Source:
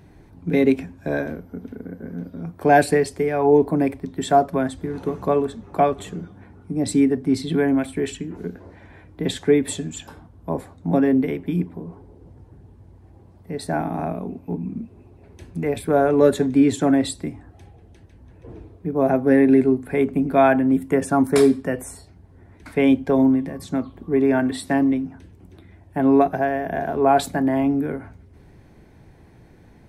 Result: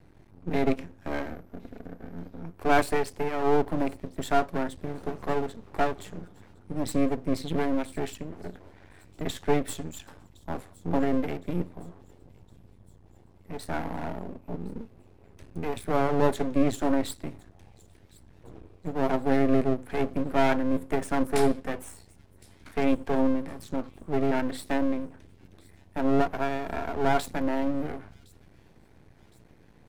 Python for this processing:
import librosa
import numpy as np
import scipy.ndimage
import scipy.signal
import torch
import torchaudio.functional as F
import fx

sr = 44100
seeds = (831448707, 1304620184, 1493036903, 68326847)

y = np.maximum(x, 0.0)
y = fx.echo_wet_highpass(y, sr, ms=1063, feedback_pct=54, hz=3900.0, wet_db=-20)
y = F.gain(torch.from_numpy(y), -3.5).numpy()